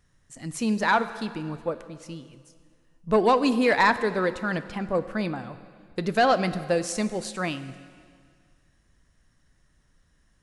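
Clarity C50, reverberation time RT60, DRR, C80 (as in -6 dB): 13.0 dB, 2.0 s, 12.0 dB, 14.0 dB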